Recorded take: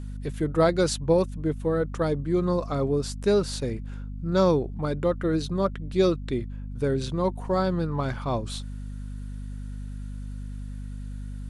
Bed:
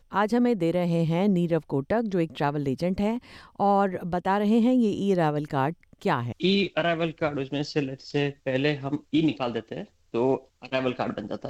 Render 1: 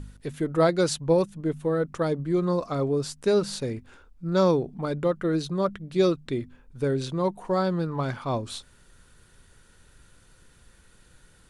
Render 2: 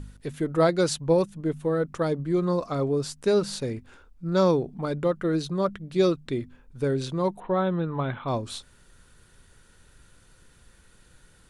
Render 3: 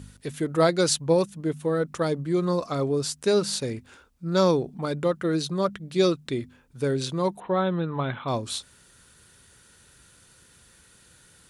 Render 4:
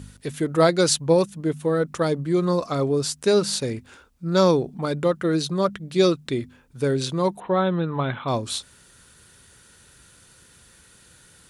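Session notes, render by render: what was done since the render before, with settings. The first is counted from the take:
hum removal 50 Hz, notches 5
0:07.40–0:08.28: linear-phase brick-wall low-pass 4,100 Hz
high-pass filter 70 Hz; high-shelf EQ 2,700 Hz +7.5 dB
level +3 dB

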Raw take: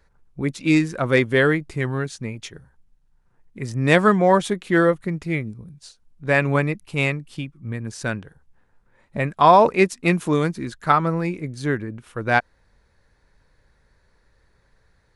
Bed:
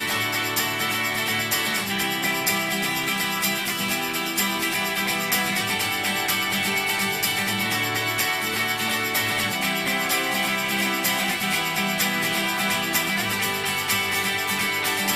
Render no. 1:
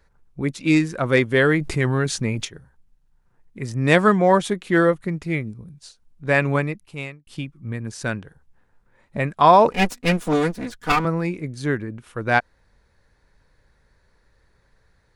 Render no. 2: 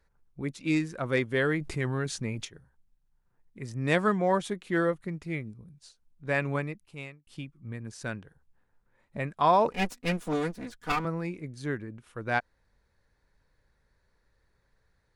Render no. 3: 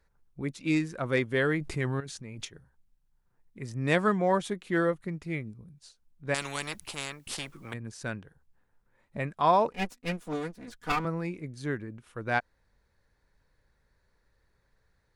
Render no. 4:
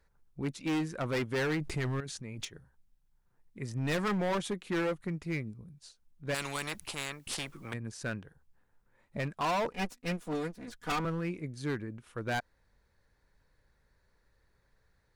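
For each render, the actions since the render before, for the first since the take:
0:01.41–0:02.45: envelope flattener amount 50%; 0:06.46–0:07.27: fade out; 0:09.72–0:11.05: lower of the sound and its delayed copy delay 4.1 ms
level −9.5 dB
0:02.00–0:02.40: output level in coarse steps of 14 dB; 0:06.34–0:07.74: every bin compressed towards the loudest bin 4 to 1; 0:09.41–0:10.68: expander for the loud parts, over −32 dBFS
gain into a clipping stage and back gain 28 dB

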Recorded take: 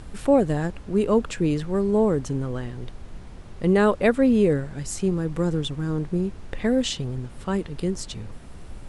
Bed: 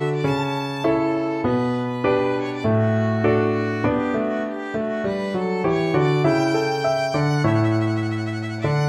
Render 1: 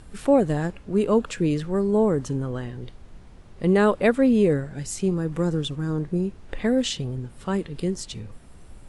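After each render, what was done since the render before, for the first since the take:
noise reduction from a noise print 6 dB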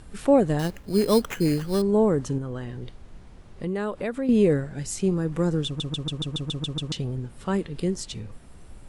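0:00.59–0:01.82: sample-rate reduction 4,600 Hz
0:02.38–0:04.29: downward compressor 2.5 to 1, threshold −29 dBFS
0:05.66: stutter in place 0.14 s, 9 plays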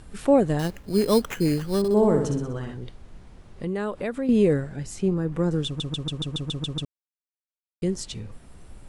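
0:01.78–0:02.74: flutter between parallel walls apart 10.7 metres, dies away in 0.67 s
0:04.76–0:05.51: high-shelf EQ 3,400 Hz −8.5 dB
0:06.85–0:07.82: silence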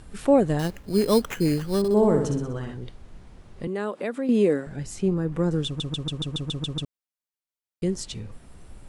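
0:03.67–0:04.67: high-pass filter 200 Hz 24 dB per octave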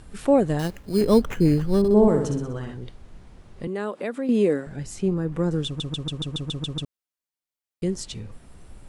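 0:01.01–0:02.08: spectral tilt −2 dB per octave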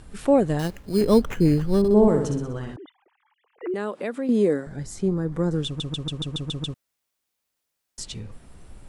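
0:02.76–0:03.74: three sine waves on the formant tracks
0:04.28–0:05.55: parametric band 2,700 Hz −11.5 dB 0.31 octaves
0:06.74–0:07.98: fill with room tone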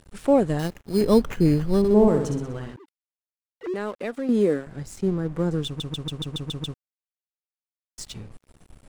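dead-zone distortion −44 dBFS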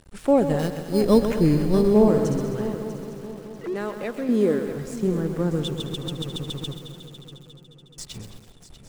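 echo machine with several playback heads 214 ms, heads first and third, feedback 56%, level −14 dB
feedback echo at a low word length 131 ms, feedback 55%, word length 7 bits, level −10 dB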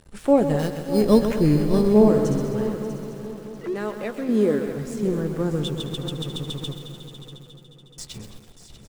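double-tracking delay 14 ms −11.5 dB
single-tap delay 585 ms −15 dB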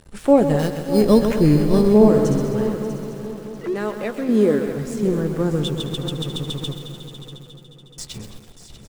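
level +3.5 dB
brickwall limiter −3 dBFS, peak gain reduction 2.5 dB

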